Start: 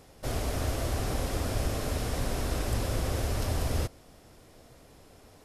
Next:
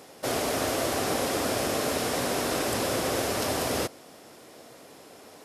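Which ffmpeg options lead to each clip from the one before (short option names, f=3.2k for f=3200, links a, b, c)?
-af "highpass=250,volume=8dB"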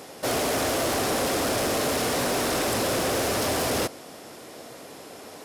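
-af "asoftclip=type=tanh:threshold=-27.5dB,volume=6.5dB"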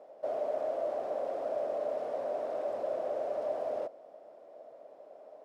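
-af "bandpass=f=610:t=q:w=7.1:csg=0"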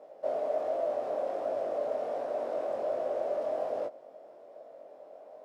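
-af "flanger=delay=19:depth=4:speed=1.3,volume=5dB"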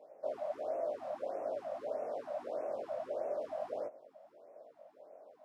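-af "afftfilt=real='re*(1-between(b*sr/1024,350*pow(4000/350,0.5+0.5*sin(2*PI*1.6*pts/sr))/1.41,350*pow(4000/350,0.5+0.5*sin(2*PI*1.6*pts/sr))*1.41))':imag='im*(1-between(b*sr/1024,350*pow(4000/350,0.5+0.5*sin(2*PI*1.6*pts/sr))/1.41,350*pow(4000/350,0.5+0.5*sin(2*PI*1.6*pts/sr))*1.41))':win_size=1024:overlap=0.75,volume=-5.5dB"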